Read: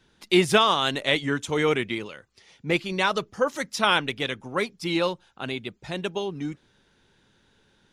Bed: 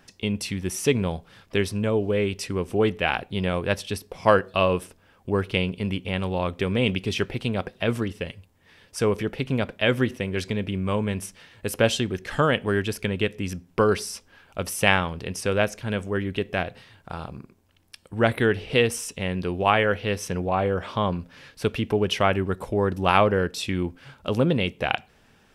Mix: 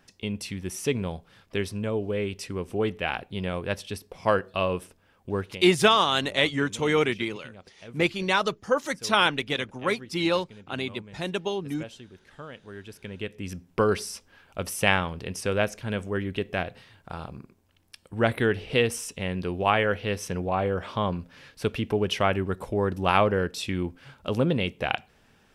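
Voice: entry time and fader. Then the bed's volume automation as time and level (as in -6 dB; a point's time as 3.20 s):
5.30 s, 0.0 dB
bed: 5.40 s -5 dB
5.67 s -21 dB
12.61 s -21 dB
13.63 s -2.5 dB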